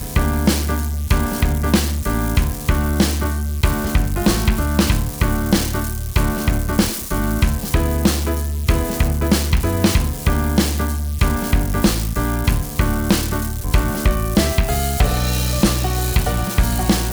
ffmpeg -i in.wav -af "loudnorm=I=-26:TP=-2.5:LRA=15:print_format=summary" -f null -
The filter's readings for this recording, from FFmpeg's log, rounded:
Input Integrated:    -19.0 LUFS
Input True Peak:      -3.3 dBTP
Input LRA:             1.3 LU
Input Threshold:     -29.0 LUFS